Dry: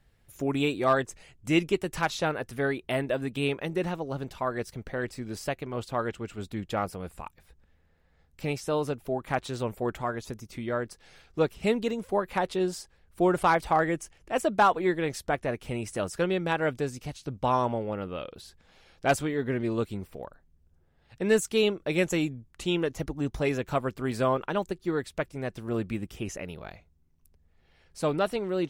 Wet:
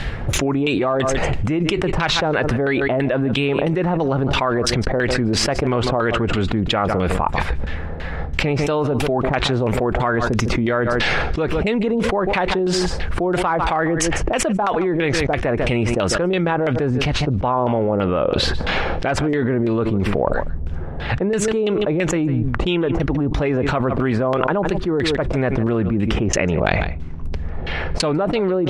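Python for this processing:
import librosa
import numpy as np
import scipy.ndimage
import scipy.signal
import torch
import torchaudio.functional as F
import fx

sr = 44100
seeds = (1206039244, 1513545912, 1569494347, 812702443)

y = fx.high_shelf(x, sr, hz=3300.0, db=fx.steps((0.0, 12.0), (16.54, 6.0)))
y = fx.filter_lfo_lowpass(y, sr, shape='saw_down', hz=3.0, low_hz=600.0, high_hz=3400.0, q=1.0)
y = y + 10.0 ** (-22.5 / 20.0) * np.pad(y, (int(148 * sr / 1000.0), 0))[:len(y)]
y = fx.env_flatten(y, sr, amount_pct=100)
y = y * librosa.db_to_amplitude(-1.0)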